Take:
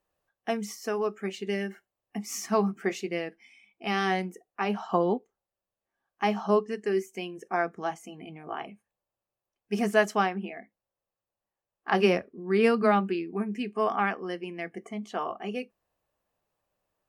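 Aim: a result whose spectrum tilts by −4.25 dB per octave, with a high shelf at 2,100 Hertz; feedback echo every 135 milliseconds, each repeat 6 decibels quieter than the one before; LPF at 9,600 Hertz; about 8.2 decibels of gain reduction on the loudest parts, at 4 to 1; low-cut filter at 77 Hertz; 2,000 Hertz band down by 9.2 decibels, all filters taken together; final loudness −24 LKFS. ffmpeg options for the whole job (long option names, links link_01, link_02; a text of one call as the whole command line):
ffmpeg -i in.wav -af "highpass=77,lowpass=9600,equalizer=frequency=2000:width_type=o:gain=-7.5,highshelf=frequency=2100:gain=-8,acompressor=threshold=-28dB:ratio=4,aecho=1:1:135|270|405|540|675|810:0.501|0.251|0.125|0.0626|0.0313|0.0157,volume=10dB" out.wav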